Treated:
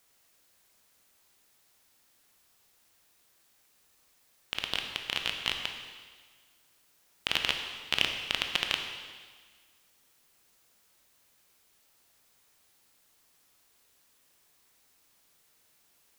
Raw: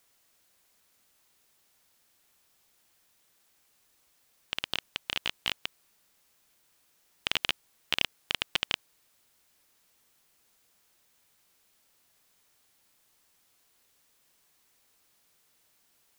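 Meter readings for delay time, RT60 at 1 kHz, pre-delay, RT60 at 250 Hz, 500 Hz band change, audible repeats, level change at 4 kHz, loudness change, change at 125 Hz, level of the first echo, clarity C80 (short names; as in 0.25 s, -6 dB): none, 1.5 s, 16 ms, 1.5 s, +1.5 dB, none, +1.5 dB, +1.0 dB, +1.5 dB, none, 6.5 dB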